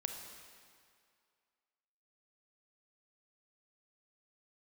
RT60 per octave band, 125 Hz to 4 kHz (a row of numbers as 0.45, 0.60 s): 1.8, 2.0, 2.2, 2.3, 2.1, 1.9 s